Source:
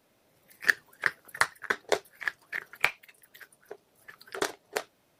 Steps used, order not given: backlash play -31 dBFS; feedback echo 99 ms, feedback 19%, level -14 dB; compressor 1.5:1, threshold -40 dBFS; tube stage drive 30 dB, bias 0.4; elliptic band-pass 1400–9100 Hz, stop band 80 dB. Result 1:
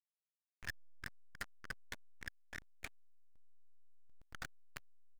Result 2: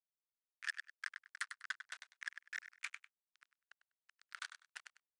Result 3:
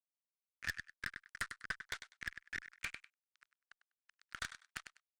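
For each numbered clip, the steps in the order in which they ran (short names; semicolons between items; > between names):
elliptic band-pass > compressor > tube stage > feedback echo > backlash; compressor > backlash > feedback echo > tube stage > elliptic band-pass; backlash > elliptic band-pass > compressor > feedback echo > tube stage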